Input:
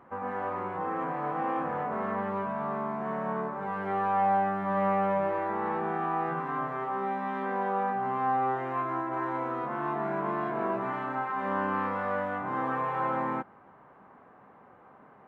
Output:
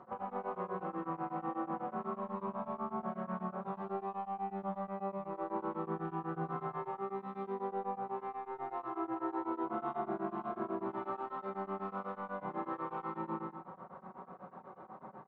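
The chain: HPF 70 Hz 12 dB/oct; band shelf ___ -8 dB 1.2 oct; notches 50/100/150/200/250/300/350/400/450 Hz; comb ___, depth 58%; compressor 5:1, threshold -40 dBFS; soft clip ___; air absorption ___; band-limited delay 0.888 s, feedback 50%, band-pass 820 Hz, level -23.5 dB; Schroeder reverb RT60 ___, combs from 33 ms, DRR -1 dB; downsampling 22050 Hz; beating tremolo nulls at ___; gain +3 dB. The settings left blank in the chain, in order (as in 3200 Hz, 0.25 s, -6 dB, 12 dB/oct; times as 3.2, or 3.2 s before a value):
2200 Hz, 5.4 ms, -30.5 dBFS, 120 m, 0.96 s, 8.1 Hz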